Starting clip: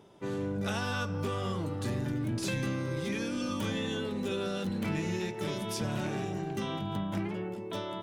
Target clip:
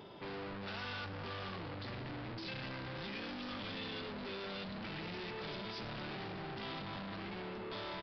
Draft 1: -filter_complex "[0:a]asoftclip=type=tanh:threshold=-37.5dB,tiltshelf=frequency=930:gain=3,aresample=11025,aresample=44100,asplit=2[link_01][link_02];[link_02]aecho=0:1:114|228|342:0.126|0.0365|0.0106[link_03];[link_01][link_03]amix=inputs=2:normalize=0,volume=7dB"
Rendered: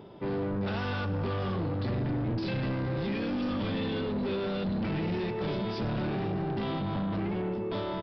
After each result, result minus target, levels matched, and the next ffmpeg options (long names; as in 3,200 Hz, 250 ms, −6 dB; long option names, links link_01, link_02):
1,000 Hz band −3.5 dB; soft clipping: distortion −4 dB
-filter_complex "[0:a]asoftclip=type=tanh:threshold=-37.5dB,tiltshelf=frequency=930:gain=-3,aresample=11025,aresample=44100,asplit=2[link_01][link_02];[link_02]aecho=0:1:114|228|342:0.126|0.0365|0.0106[link_03];[link_01][link_03]amix=inputs=2:normalize=0,volume=7dB"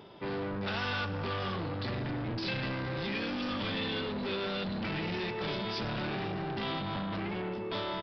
soft clipping: distortion −4 dB
-filter_complex "[0:a]asoftclip=type=tanh:threshold=-48.5dB,tiltshelf=frequency=930:gain=-3,aresample=11025,aresample=44100,asplit=2[link_01][link_02];[link_02]aecho=0:1:114|228|342:0.126|0.0365|0.0106[link_03];[link_01][link_03]amix=inputs=2:normalize=0,volume=7dB"